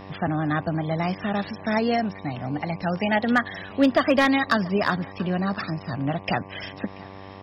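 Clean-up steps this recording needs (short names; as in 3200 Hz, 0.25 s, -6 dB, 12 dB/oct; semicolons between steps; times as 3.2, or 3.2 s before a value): clip repair -10 dBFS; de-hum 96.6 Hz, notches 12; inverse comb 0.684 s -22 dB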